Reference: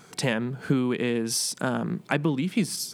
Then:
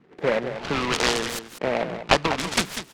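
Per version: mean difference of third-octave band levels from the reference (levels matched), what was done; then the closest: 10.0 dB: three-band isolator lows -18 dB, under 570 Hz, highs -21 dB, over 3300 Hz; LFO low-pass saw up 0.72 Hz 270–4000 Hz; on a send: echo 0.195 s -10 dB; on the sum: noise-modulated delay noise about 1200 Hz, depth 0.13 ms; gain +9 dB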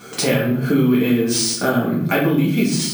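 7.5 dB: notch comb 940 Hz; shoebox room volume 96 m³, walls mixed, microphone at 1.8 m; sample-and-hold 3×; compressor 2:1, threshold -26 dBFS, peak gain reduction 8.5 dB; gain +7 dB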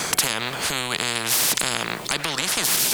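15.0 dB: dynamic EQ 3200 Hz, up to +6 dB, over -43 dBFS, Q 0.73; reverse; upward compressor, threshold -26 dBFS; reverse; maximiser +13.5 dB; spectral compressor 10:1; gain -1 dB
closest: second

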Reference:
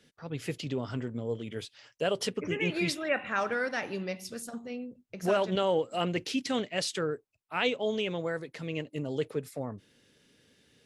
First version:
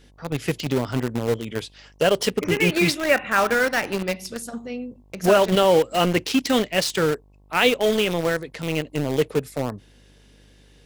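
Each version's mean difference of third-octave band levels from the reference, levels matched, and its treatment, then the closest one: 5.5 dB: de-esser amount 65%; in parallel at -6.5 dB: bit-crush 5-bit; on the sum: buzz 50 Hz, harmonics 22, -61 dBFS -7 dB/oct; gain +7 dB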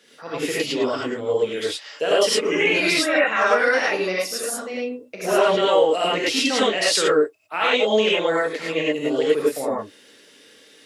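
8.0 dB: HPF 380 Hz 12 dB/oct; limiter -23.5 dBFS, peak gain reduction 8 dB; non-linear reverb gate 0.13 s rising, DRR -6.5 dB; gain +8.5 dB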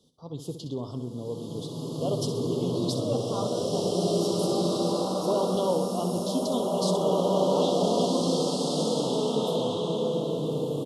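13.0 dB: elliptic band-stop 1100–3400 Hz, stop band 40 dB; feedback echo 64 ms, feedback 45%, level -10 dB; bloom reverb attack 1.98 s, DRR -6 dB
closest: first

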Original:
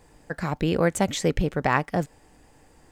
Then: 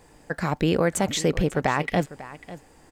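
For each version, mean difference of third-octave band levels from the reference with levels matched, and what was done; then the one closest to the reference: 3.5 dB: spectral gain 1.8–2, 1900–4300 Hz +11 dB; low shelf 110 Hz -5 dB; limiter -14 dBFS, peak gain reduction 7.5 dB; echo 0.546 s -16.5 dB; gain +3 dB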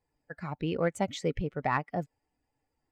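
8.0 dB: per-bin expansion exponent 1.5; bell 110 Hz +4 dB 1.5 oct; notch 1600 Hz, Q 17; overdrive pedal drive 7 dB, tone 1900 Hz, clips at -9 dBFS; gain -4.5 dB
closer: first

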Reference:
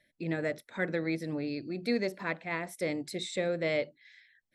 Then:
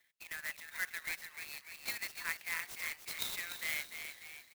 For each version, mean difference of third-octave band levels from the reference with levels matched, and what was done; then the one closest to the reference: 18.0 dB: Bessel high-pass 1900 Hz, order 6; frequency-shifting echo 0.296 s, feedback 52%, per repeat +70 Hz, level -8 dB; clock jitter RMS 0.038 ms; gain +1.5 dB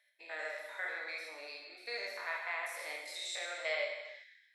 13.5 dB: stepped spectrum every 0.1 s; HPF 760 Hz 24 dB/oct; non-linear reverb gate 0.41 s falling, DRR -0.5 dB; gain -1 dB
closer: second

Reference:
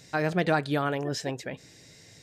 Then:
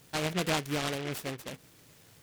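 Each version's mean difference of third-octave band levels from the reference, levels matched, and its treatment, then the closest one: 7.0 dB: noise-modulated delay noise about 2000 Hz, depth 0.17 ms; gain -5 dB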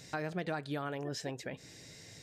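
4.5 dB: compressor 2.5:1, threshold -39 dBFS, peak gain reduction 13 dB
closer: second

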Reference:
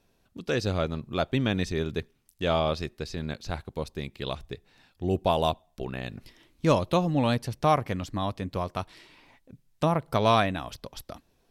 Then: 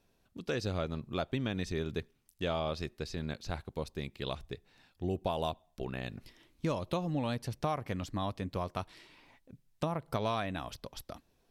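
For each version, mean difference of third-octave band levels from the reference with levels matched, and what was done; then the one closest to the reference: 3.0 dB: compressor 6:1, threshold -25 dBFS, peak gain reduction 9 dB; gain -4 dB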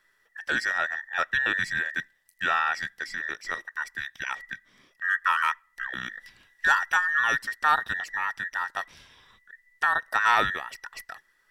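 11.0 dB: band inversion scrambler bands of 2000 Hz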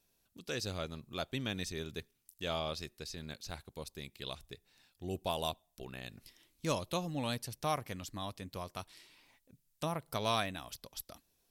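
4.5 dB: pre-emphasis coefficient 0.8; gain +1 dB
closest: first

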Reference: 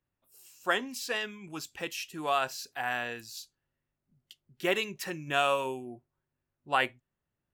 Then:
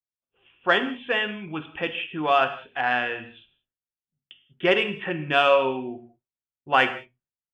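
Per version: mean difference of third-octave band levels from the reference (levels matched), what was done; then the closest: 8.5 dB: expander -54 dBFS; Chebyshev low-pass 3500 Hz, order 10; in parallel at -11 dB: soft clip -25 dBFS, distortion -11 dB; on the sum: non-linear reverb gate 0.22 s falling, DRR 8 dB; gain +6.5 dB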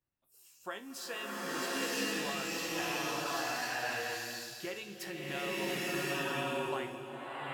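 14.5 dB: compressor, threshold -33 dBFS, peak gain reduction 11.5 dB; resonator 68 Hz, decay 0.28 s, harmonics all, mix 70%; bloom reverb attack 1.05 s, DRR -9 dB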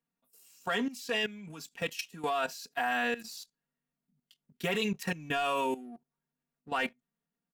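4.0 dB: resonant low shelf 120 Hz -9.5 dB, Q 3; comb 4.3 ms, depth 89%; sample leveller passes 1; level quantiser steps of 15 dB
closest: third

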